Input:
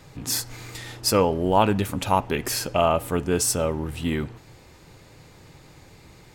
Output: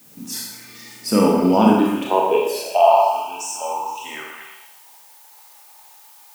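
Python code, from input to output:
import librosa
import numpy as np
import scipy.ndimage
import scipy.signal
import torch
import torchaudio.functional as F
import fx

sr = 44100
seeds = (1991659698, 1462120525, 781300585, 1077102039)

p1 = fx.noise_reduce_blind(x, sr, reduce_db=9)
p2 = fx.filter_sweep_highpass(p1, sr, from_hz=220.0, to_hz=850.0, start_s=1.61, end_s=2.91, q=5.6)
p3 = fx.level_steps(p2, sr, step_db=19)
p4 = p2 + (p3 * 10.0 ** (0.0 / 20.0))
p5 = fx.fixed_phaser(p4, sr, hz=2700.0, stages=8, at=(3.02, 3.61))
p6 = fx.dmg_noise_colour(p5, sr, seeds[0], colour='blue', level_db=-45.0)
p7 = fx.spec_box(p6, sr, start_s=2.09, length_s=1.95, low_hz=1100.0, high_hz=2300.0, gain_db=-16)
p8 = p7 + fx.echo_stepped(p7, sr, ms=118, hz=1100.0, octaves=0.7, feedback_pct=70, wet_db=-4.5, dry=0)
p9 = fx.rev_schroeder(p8, sr, rt60_s=0.83, comb_ms=26, drr_db=-1.5)
y = p9 * 10.0 ** (-6.5 / 20.0)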